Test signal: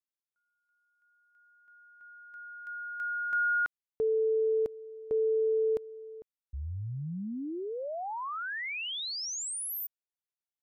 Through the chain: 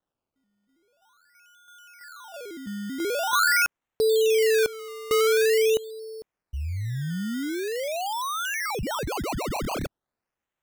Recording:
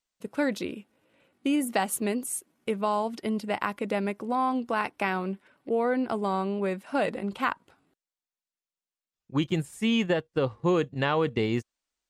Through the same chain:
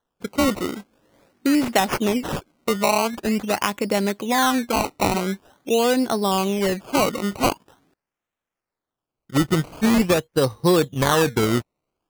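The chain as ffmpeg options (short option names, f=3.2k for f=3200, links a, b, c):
-af "acrusher=samples=18:mix=1:aa=0.000001:lfo=1:lforange=18:lforate=0.45,volume=7dB"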